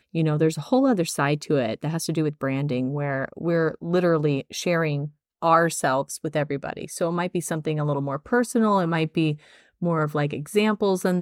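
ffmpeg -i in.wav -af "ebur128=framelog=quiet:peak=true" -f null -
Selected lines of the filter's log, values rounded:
Integrated loudness:
  I:         -24.0 LUFS
  Threshold: -34.1 LUFS
Loudness range:
  LRA:         1.5 LU
  Threshold: -44.3 LUFS
  LRA low:   -24.9 LUFS
  LRA high:  -23.5 LUFS
True peak:
  Peak:       -6.4 dBFS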